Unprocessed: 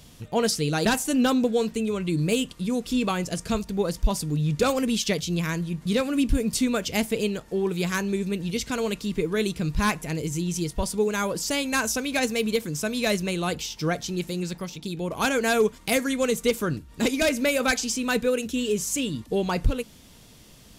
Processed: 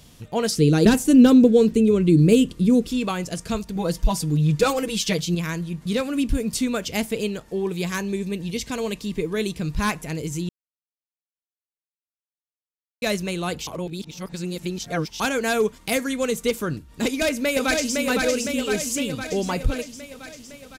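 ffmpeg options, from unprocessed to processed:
-filter_complex "[0:a]asettb=1/sr,asplit=3[s0][s1][s2];[s0]atrim=end=0.574[s3];[s1]atrim=start=0.57:end=2.88,asetpts=PTS-STARTPTS,afade=t=in:d=0.004:c=qsin,afade=t=out:st=2.306:d=0.004:c=qsin,lowshelf=f=540:t=q:w=1.5:g=8.5[s4];[s2]atrim=start=2.876[s5];[s3][s4]acrossfade=d=0.004:c1=hsin:c2=qsin[s6];[s6][s5]acrossfade=d=0.004:c1=qsin:c2=hsin,asettb=1/sr,asplit=3[s7][s8][s9];[s7]atrim=end=3.754[s10];[s8]atrim=start=3.75:end=5.35,asetpts=PTS-STARTPTS,afade=t=in:d=0.004:c=qsin,afade=t=out:st=1.596:d=0.004:c=qsin,aecho=1:1:6.2:0.85,atrim=end_sample=70560[s11];[s9]atrim=start=5.346[s12];[s10][s11]acrossfade=d=0.004:c1=hsin:c2=qsin[s13];[s13][s12]acrossfade=d=0.004:c1=qsin:c2=hsin,asettb=1/sr,asplit=3[s14][s15][s16];[s14]atrim=end=7.514[s17];[s15]atrim=start=7.51:end=9.6,asetpts=PTS-STARTPTS,afade=t=in:d=0.004:c=qsin,afade=t=out:st=2.086:d=0.004:c=qsin,bandreject=f=1400:w=7.4[s18];[s16]atrim=start=9.596[s19];[s17][s18]acrossfade=d=0.004:c1=hsin:c2=qsin[s20];[s20][s19]acrossfade=d=0.004:c1=qsin:c2=hsin,asplit=2[s21][s22];[s22]afade=t=in:st=17.05:d=0.01,afade=t=out:st=18:d=0.01,aecho=0:1:510|1020|1530|2040|2550|3060|3570|4080|4590|5100:0.707946|0.460165|0.299107|0.19442|0.126373|0.0821423|0.0533925|0.0347051|0.0225583|0.0146629[s23];[s21][s23]amix=inputs=2:normalize=0,asplit=5[s24][s25][s26][s27][s28];[s24]atrim=end=10.49,asetpts=PTS-STARTPTS,afade=t=out:st=10.486:d=0.004:c=hsin[s29];[s25]atrim=start=10.49:end=13.02,asetpts=PTS-STARTPTS,volume=0[s30];[s26]atrim=start=13.02:end=13.672,asetpts=PTS-STARTPTS,afade=t=in:d=0.004:c=hsin[s31];[s27]atrim=start=13.668:end=15.202,asetpts=PTS-STARTPTS,areverse[s32];[s28]atrim=start=15.198[s33];[s29][s30][s31]concat=n=3:v=0:a=1[s34];[s34][s32]acrossfade=d=0.004:c1=hsin:c2=hsin[s35];[s35][s33]acrossfade=d=0.004:c1=hsin:c2=hsin"

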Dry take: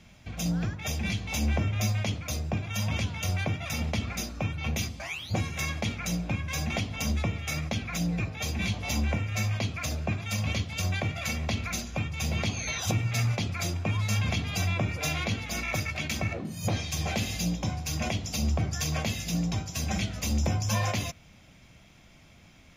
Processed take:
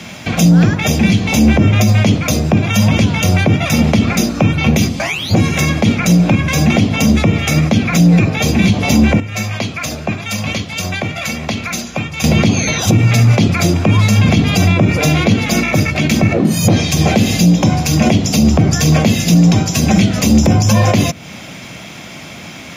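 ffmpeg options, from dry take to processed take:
-filter_complex "[0:a]asplit=3[s0][s1][s2];[s0]atrim=end=9.202[s3];[s1]atrim=start=9.198:end=12.242,asetpts=PTS-STARTPTS,volume=0.266[s4];[s2]atrim=start=12.238[s5];[s3][s4]acrossfade=d=0.004:c1=hsin:c2=hsin[s6];[s6][s5]acrossfade=d=0.004:c1=hsin:c2=hsin,highpass=160,acrossover=split=470[s7][s8];[s8]acompressor=threshold=0.00562:ratio=4[s9];[s7][s9]amix=inputs=2:normalize=0,alimiter=level_in=22.4:limit=0.891:release=50:level=0:latency=1,volume=0.891"

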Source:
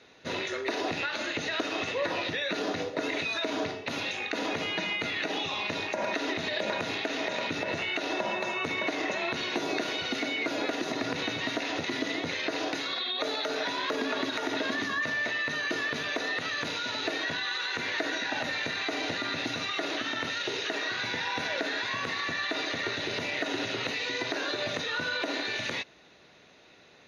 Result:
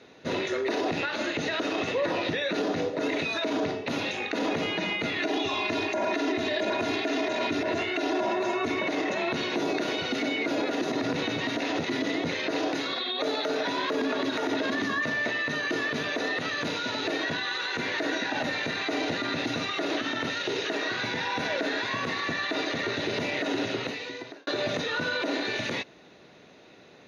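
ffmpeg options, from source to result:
-filter_complex "[0:a]asettb=1/sr,asplit=3[s0][s1][s2];[s0]atrim=end=5.184[s3];[s1]atrim=start=5.18:end=8.79,asetpts=PTS-STARTPTS,afade=t=in:d=0.004:c=qsin,afade=t=out:st=3.606:d=0.004:c=qsin,aecho=1:1:2.9:0.65,atrim=end_sample=159201[s4];[s2]atrim=start=8.786[s5];[s3][s4]acrossfade=d=0.004:c1=hsin:c2=qsin[s6];[s6][s5]acrossfade=d=0.004:c1=qsin:c2=hsin,asplit=2[s7][s8];[s7]atrim=end=24.47,asetpts=PTS-STARTPTS,afade=t=out:st=23.57:d=0.9[s9];[s8]atrim=start=24.47,asetpts=PTS-STARTPTS,afade=t=in:d=0.004:c=hsin[s10];[s9][s10]concat=n=2:v=0:a=1,equalizer=f=220:w=0.3:g=8,alimiter=limit=0.112:level=0:latency=1:release=22,lowshelf=f=85:g=-5"

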